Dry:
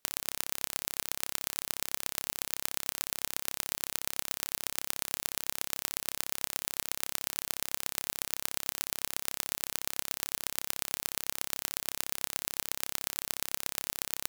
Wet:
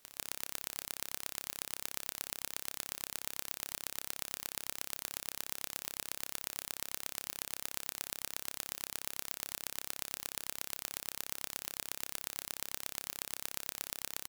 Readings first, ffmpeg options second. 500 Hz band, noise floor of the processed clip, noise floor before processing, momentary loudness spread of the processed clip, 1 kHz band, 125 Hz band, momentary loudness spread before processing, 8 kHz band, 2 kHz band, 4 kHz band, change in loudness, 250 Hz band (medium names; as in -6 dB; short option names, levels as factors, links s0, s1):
-5.5 dB, -67 dBFS, -76 dBFS, 1 LU, -6.5 dB, -6.5 dB, 1 LU, -6.0 dB, -6.0 dB, -6.0 dB, -6.0 dB, -6.0 dB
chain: -af "aecho=1:1:147:0.168,aeval=exprs='0.188*(abs(mod(val(0)/0.188+3,4)-2)-1)':c=same,volume=2.82"